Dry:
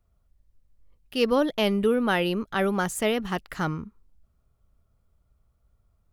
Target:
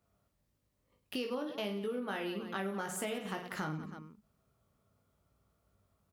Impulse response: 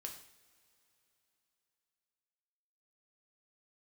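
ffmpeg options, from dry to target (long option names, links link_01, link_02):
-af "highpass=140,aecho=1:1:20|52|103.2|185.1|316.2:0.631|0.398|0.251|0.158|0.1,acompressor=threshold=-36dB:ratio=6"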